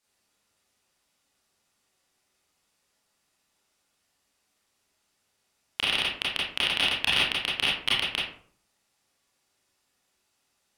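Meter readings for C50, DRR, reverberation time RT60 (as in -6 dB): 1.5 dB, -7.5 dB, 0.55 s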